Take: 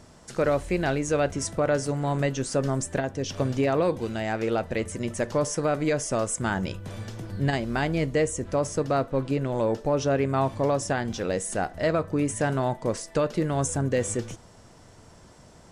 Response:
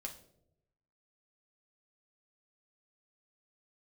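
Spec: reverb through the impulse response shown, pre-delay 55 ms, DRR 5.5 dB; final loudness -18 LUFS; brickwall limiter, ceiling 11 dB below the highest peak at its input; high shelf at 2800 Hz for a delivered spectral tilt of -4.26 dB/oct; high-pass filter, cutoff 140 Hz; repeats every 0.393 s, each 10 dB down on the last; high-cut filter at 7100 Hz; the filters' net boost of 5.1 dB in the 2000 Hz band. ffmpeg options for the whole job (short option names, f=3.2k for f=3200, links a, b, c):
-filter_complex "[0:a]highpass=140,lowpass=7.1k,equalizer=f=2k:t=o:g=5,highshelf=f=2.8k:g=4.5,alimiter=limit=-19.5dB:level=0:latency=1,aecho=1:1:393|786|1179|1572:0.316|0.101|0.0324|0.0104,asplit=2[a][b];[1:a]atrim=start_sample=2205,adelay=55[c];[b][c]afir=irnorm=-1:irlink=0,volume=-3dB[d];[a][d]amix=inputs=2:normalize=0,volume=11.5dB"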